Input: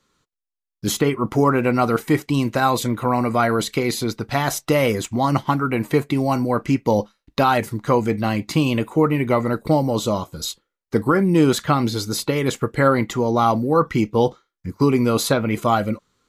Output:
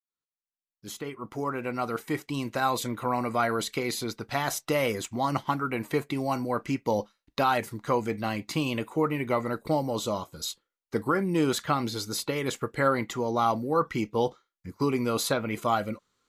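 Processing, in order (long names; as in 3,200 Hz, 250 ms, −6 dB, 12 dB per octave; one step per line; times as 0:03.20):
fade in at the beginning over 2.89 s
low-shelf EQ 340 Hz −6.5 dB
level −6 dB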